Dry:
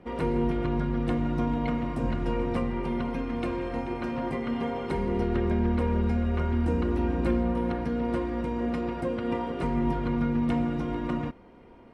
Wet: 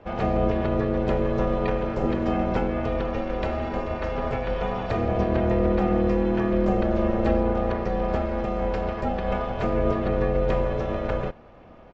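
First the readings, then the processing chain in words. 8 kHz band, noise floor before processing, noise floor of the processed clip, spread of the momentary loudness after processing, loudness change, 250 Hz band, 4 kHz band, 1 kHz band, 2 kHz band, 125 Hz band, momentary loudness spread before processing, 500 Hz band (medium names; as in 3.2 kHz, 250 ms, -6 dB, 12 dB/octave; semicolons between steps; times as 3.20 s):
no reading, -51 dBFS, -48 dBFS, 6 LU, +3.5 dB, +1.0 dB, +3.0 dB, +5.0 dB, +4.5 dB, +2.0 dB, 5 LU, +7.0 dB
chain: ring modulator 280 Hz; resampled via 16 kHz; trim +6.5 dB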